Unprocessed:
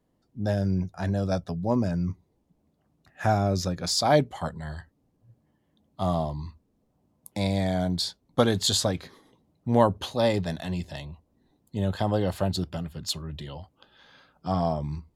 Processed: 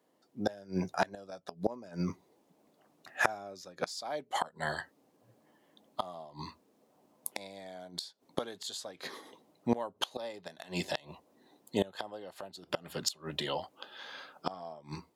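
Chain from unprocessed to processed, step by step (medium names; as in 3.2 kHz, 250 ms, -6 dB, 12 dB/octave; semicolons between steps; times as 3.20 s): high-pass 380 Hz 12 dB/octave; level rider gain up to 4.5 dB; inverted gate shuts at -20 dBFS, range -25 dB; trim +4.5 dB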